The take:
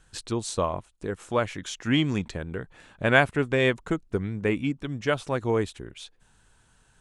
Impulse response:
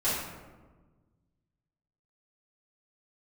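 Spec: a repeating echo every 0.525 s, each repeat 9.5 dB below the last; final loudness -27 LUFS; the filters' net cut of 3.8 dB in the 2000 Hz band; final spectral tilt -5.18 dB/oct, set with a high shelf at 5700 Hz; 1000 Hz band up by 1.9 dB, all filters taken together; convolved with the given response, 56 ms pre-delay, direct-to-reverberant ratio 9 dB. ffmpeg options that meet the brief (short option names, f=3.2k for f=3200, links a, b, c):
-filter_complex "[0:a]equalizer=f=1k:t=o:g=4.5,equalizer=f=2k:t=o:g=-7,highshelf=f=5.7k:g=-3,aecho=1:1:525|1050|1575|2100:0.335|0.111|0.0365|0.012,asplit=2[a][b];[1:a]atrim=start_sample=2205,adelay=56[c];[b][c]afir=irnorm=-1:irlink=0,volume=-19.5dB[d];[a][d]amix=inputs=2:normalize=0,volume=-0.5dB"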